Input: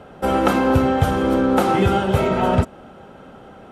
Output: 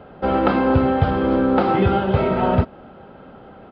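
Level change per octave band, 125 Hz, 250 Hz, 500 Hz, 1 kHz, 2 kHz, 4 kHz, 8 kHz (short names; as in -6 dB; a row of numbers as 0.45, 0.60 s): 0.0 dB, 0.0 dB, 0.0 dB, -0.5 dB, -2.0 dB, -4.5 dB, under -35 dB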